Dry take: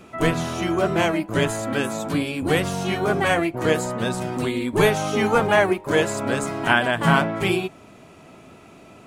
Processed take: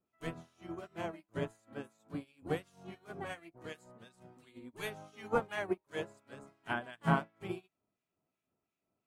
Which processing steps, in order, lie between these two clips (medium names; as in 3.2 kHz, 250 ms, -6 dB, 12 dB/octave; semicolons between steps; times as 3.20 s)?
harmonic tremolo 2.8 Hz, depth 70%, crossover 1.4 kHz; upward expansion 2.5:1, over -35 dBFS; trim -8.5 dB